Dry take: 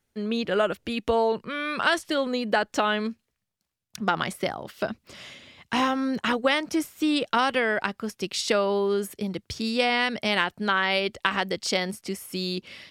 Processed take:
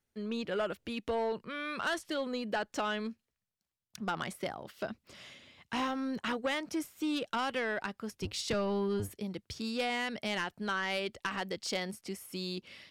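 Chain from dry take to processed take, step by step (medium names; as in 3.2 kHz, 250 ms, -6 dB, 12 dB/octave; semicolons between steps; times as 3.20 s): 8.11–9.14 s: octave divider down 1 oct, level +3 dB; saturation -17 dBFS, distortion -16 dB; trim -8 dB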